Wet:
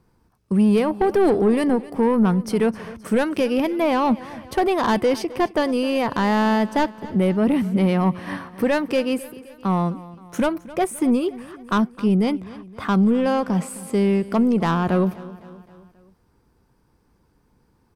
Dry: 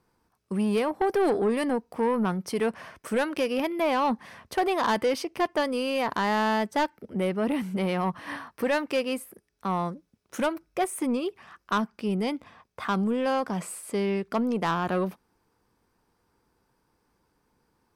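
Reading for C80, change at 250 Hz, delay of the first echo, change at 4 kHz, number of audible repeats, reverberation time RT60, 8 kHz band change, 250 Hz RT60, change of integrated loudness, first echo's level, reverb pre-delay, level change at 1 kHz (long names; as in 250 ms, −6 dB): no reverb audible, +9.5 dB, 261 ms, +2.5 dB, 3, no reverb audible, +2.5 dB, no reverb audible, +7.0 dB, −18.5 dB, no reverb audible, +3.5 dB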